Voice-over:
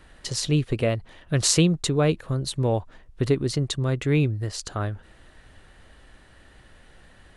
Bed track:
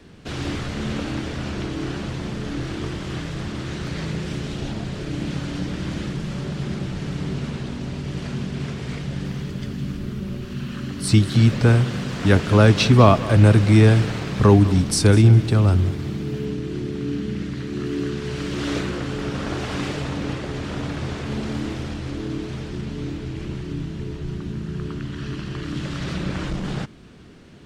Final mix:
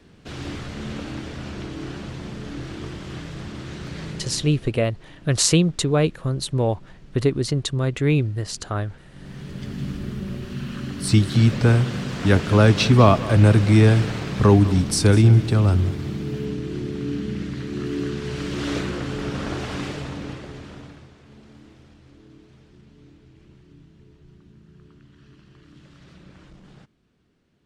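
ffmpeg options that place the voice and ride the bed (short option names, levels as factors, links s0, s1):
-filter_complex "[0:a]adelay=3950,volume=1.26[s0];[1:a]volume=6.31,afade=t=out:st=4.06:d=0.67:silence=0.141254,afade=t=in:st=9.1:d=0.72:silence=0.0891251,afade=t=out:st=19.44:d=1.66:silence=0.1[s1];[s0][s1]amix=inputs=2:normalize=0"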